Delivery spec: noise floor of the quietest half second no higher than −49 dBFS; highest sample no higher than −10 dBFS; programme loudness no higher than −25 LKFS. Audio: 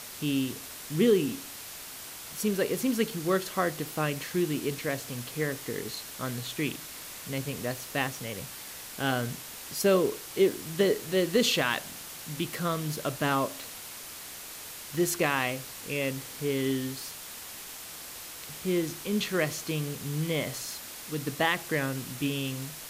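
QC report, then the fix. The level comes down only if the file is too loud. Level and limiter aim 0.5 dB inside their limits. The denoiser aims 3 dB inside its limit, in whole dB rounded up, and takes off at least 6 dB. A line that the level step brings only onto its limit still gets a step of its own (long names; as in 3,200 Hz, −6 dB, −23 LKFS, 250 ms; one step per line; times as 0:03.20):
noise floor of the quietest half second −43 dBFS: out of spec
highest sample −12.0 dBFS: in spec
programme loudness −30.5 LKFS: in spec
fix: broadband denoise 9 dB, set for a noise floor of −43 dBFS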